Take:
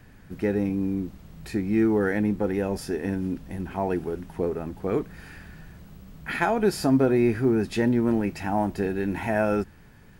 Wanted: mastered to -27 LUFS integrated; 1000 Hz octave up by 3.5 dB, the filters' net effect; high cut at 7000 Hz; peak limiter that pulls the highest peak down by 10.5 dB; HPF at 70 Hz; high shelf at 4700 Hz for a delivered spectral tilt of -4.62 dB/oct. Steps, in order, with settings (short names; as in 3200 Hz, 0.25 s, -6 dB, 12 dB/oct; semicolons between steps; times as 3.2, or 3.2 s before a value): HPF 70 Hz; LPF 7000 Hz; bell 1000 Hz +5 dB; high shelf 4700 Hz -4 dB; gain +1 dB; limiter -16 dBFS